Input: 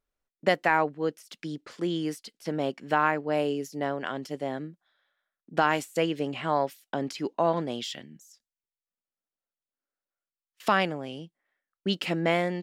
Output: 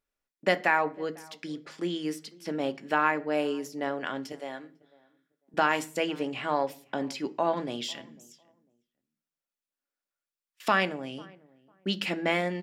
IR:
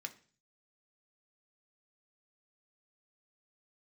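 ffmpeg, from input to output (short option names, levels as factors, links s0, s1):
-filter_complex "[0:a]asettb=1/sr,asplit=3[s0][s1][s2];[s0]atrim=end=4.324[s3];[s1]atrim=start=4.32:end=5.54,asetpts=PTS-STARTPTS,afade=t=in:d=0.004:c=qsin,afade=t=out:st=1.216:d=0.004:c=qsin,highpass=f=780:p=1[s4];[s2]atrim=start=5.536[s5];[s3][s4]acrossfade=d=0.004:c1=hsin:c2=qsin[s6];[s6][s5]acrossfade=d=0.004:c1=qsin:c2=hsin,asplit=2[s7][s8];[s8]adelay=499,lowpass=f=1100:p=1,volume=0.0708,asplit=2[s9][s10];[s10]adelay=499,lowpass=f=1100:p=1,volume=0.22[s11];[s7][s9][s11]amix=inputs=3:normalize=0,asplit=2[s12][s13];[1:a]atrim=start_sample=2205[s14];[s13][s14]afir=irnorm=-1:irlink=0,volume=1.68[s15];[s12][s15]amix=inputs=2:normalize=0,volume=0.473"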